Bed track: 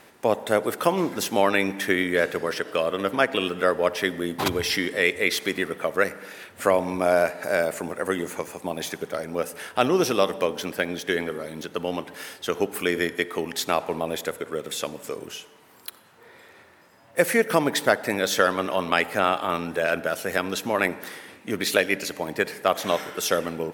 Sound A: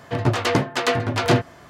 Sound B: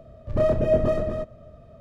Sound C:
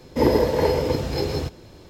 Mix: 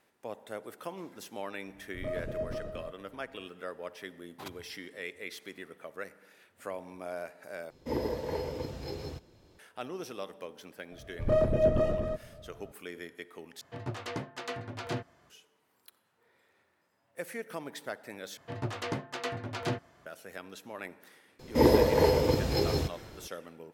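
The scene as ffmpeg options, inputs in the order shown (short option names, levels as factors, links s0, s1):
-filter_complex "[2:a]asplit=2[s0][s1];[3:a]asplit=2[s2][s3];[1:a]asplit=2[s4][s5];[0:a]volume=0.112[s6];[s3]highshelf=f=8500:g=5[s7];[s6]asplit=4[s8][s9][s10][s11];[s8]atrim=end=7.704[s12];[s2]atrim=end=1.89,asetpts=PTS-STARTPTS,volume=0.188[s13];[s9]atrim=start=9.586:end=13.614[s14];[s4]atrim=end=1.69,asetpts=PTS-STARTPTS,volume=0.133[s15];[s10]atrim=start=15.296:end=18.374[s16];[s5]atrim=end=1.69,asetpts=PTS-STARTPTS,volume=0.178[s17];[s11]atrim=start=20.056[s18];[s0]atrim=end=1.8,asetpts=PTS-STARTPTS,volume=0.168,afade=t=in:d=0.004:c=hsin,afade=t=out:st=1.796:d=0.004:c=hsin,adelay=1670[s19];[s1]atrim=end=1.8,asetpts=PTS-STARTPTS,volume=0.596,afade=t=in:d=0.004:c=hsin,afade=t=out:st=1.796:d=0.004:c=hsin,adelay=10920[s20];[s7]atrim=end=1.89,asetpts=PTS-STARTPTS,volume=0.668,afade=t=in:d=0.004:c=hsin,afade=t=out:st=1.886:d=0.004:c=hsin,adelay=21390[s21];[s12][s13]acrossfade=d=0.004:c1=hsin:c2=hsin[s22];[s22][s14]acrossfade=d=0.004:c1=hsin:c2=hsin[s23];[s23][s15]acrossfade=d=0.004:c1=hsin:c2=hsin[s24];[s24][s16]acrossfade=d=0.004:c1=hsin:c2=hsin[s25];[s25][s17]acrossfade=d=0.004:c1=hsin:c2=hsin[s26];[s26][s18]acrossfade=d=0.004:c1=hsin:c2=hsin[s27];[s27][s19][s20][s21]amix=inputs=4:normalize=0"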